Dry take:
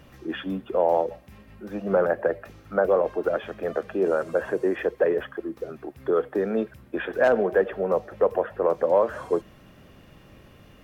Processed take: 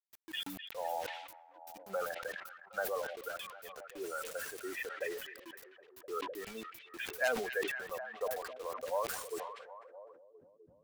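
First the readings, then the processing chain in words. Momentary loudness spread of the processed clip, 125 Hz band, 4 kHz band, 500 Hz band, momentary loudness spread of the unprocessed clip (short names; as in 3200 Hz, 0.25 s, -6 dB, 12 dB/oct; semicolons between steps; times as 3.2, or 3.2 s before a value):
16 LU, -22.5 dB, n/a, -17.5 dB, 12 LU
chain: per-bin expansion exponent 2; differentiator; requantised 10-bit, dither none; delay with a stepping band-pass 0.255 s, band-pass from 2500 Hz, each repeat -0.7 oct, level -8 dB; sustainer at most 50 dB/s; gain +9 dB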